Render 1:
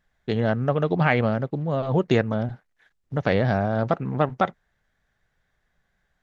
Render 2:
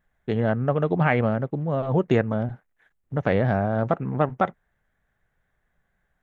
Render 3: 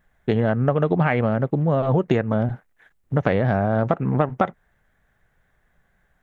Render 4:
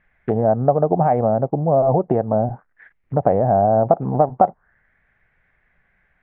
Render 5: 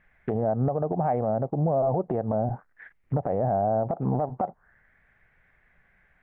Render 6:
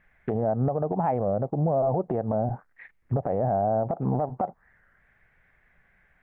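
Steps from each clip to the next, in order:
bell 4800 Hz -14 dB 0.97 oct
compressor, threshold -23 dBFS, peak gain reduction 9 dB; gain +7.5 dB
envelope low-pass 740–2300 Hz down, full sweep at -18.5 dBFS; gain -1.5 dB
compressor 6:1, threshold -18 dBFS, peak gain reduction 9.5 dB; limiter -16.5 dBFS, peak gain reduction 9.5 dB
record warp 33 1/3 rpm, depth 160 cents

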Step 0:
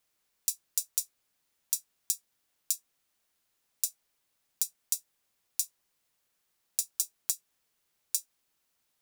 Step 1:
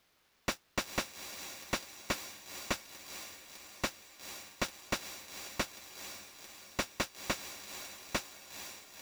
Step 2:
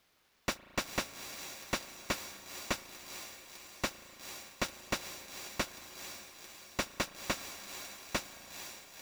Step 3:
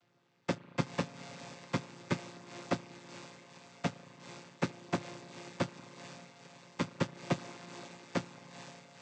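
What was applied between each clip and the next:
median filter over 5 samples; diffused feedback echo 0.488 s, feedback 58%, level -14 dB; slew limiter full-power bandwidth 34 Hz; gain +11 dB
reverb RT60 3.6 s, pre-delay 36 ms, DRR 16 dB
chord vocoder minor triad, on A#2; gain +2.5 dB

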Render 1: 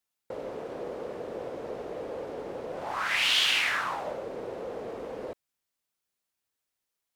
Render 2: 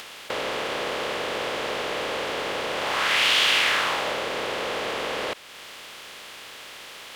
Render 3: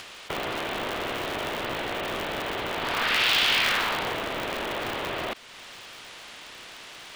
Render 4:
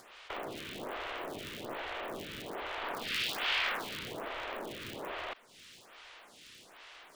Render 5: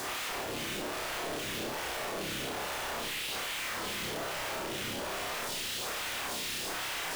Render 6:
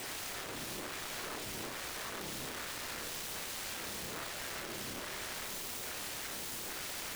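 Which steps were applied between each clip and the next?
per-bin compression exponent 0.4; in parallel at +1.5 dB: upward compressor, threshold -31 dBFS; on the sum: gain -6 dB
spectral gate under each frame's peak -20 dB strong; polarity switched at an audio rate 120 Hz; gain -2 dB
photocell phaser 1.2 Hz; gain -7 dB
infinite clipping; on a send: flutter echo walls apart 5.2 m, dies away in 0.4 s; on the sum: gain +2 dB
self-modulated delay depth 0.44 ms; gain -4.5 dB

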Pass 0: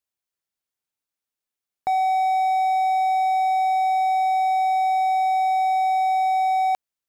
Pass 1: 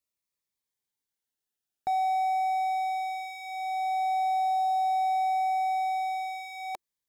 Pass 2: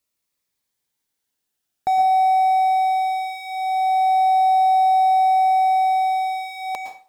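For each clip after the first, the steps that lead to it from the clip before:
limiter -20 dBFS, peak gain reduction 4.5 dB; cascading phaser falling 0.32 Hz
reverb RT60 0.40 s, pre-delay 0.102 s, DRR 5.5 dB; gain +8.5 dB

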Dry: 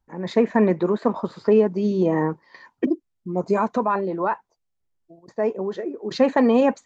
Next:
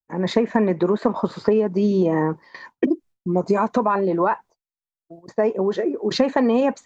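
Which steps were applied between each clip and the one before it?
compressor, threshold -22 dBFS, peak gain reduction 10 dB; expander -46 dBFS; gain +7 dB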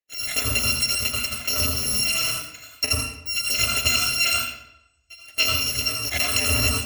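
FFT order left unsorted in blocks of 256 samples; reverb RT60 0.85 s, pre-delay 81 ms, DRR 0 dB; gain -5.5 dB

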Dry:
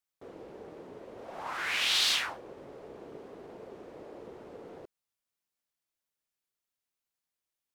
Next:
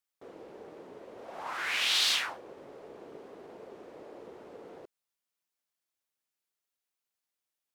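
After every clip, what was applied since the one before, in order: low shelf 150 Hz -10 dB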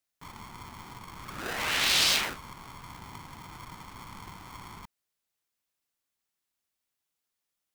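polarity switched at an audio rate 550 Hz; gain +3 dB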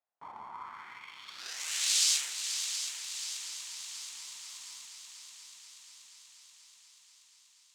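multi-head echo 0.241 s, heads second and third, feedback 68%, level -9.5 dB; band-pass sweep 780 Hz -> 7300 Hz, 0.43–1.66; gain +6 dB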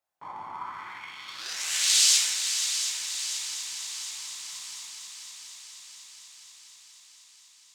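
reverb RT60 1.5 s, pre-delay 4 ms, DRR 1.5 dB; gain +4.5 dB

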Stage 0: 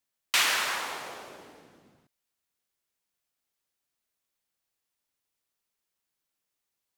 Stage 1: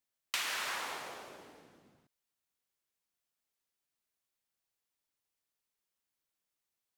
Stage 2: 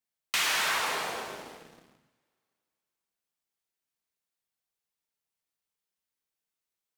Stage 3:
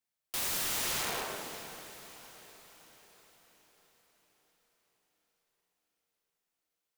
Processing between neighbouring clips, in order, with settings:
compressor 6:1, threshold -28 dBFS, peak gain reduction 8 dB; gain -4.5 dB
two-slope reverb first 0.72 s, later 2.7 s, from -18 dB, DRR 1 dB; sample leveller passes 2
wrapped overs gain 28.5 dB; diffused feedback echo 0.544 s, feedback 52%, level -12.5 dB

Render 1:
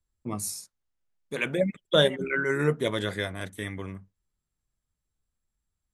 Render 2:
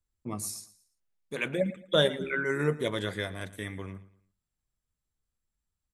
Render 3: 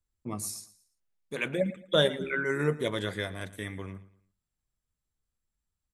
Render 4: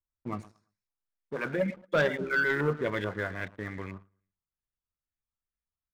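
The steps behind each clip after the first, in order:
feedback echo 0.113 s, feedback 36%, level -18 dB; gain -3 dB
nothing audible
LFO low-pass saw up 2.3 Hz 990–2300 Hz; sample leveller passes 2; gain -7.5 dB

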